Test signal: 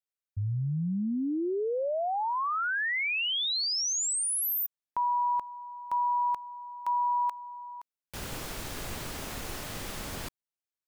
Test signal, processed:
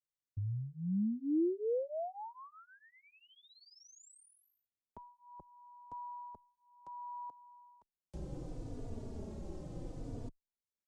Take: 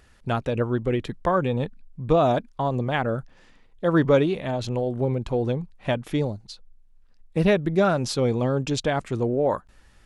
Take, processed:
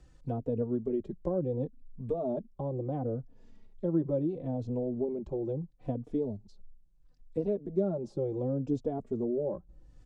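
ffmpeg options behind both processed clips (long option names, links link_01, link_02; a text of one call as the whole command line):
ffmpeg -i in.wav -filter_complex "[0:a]acrossover=split=240|730[link_01][link_02][link_03];[link_01]acompressor=threshold=-42dB:ratio=4[link_04];[link_02]acompressor=threshold=-25dB:ratio=4[link_05];[link_03]acompressor=threshold=-60dB:ratio=4[link_06];[link_04][link_05][link_06]amix=inputs=3:normalize=0,lowpass=frequency=7800:width=0.5412,lowpass=frequency=7800:width=1.3066,equalizer=frequency=2000:width=0.35:gain=-14,asplit=2[link_07][link_08];[link_08]adelay=3.4,afreqshift=-0.72[link_09];[link_07][link_09]amix=inputs=2:normalize=1,volume=4dB" out.wav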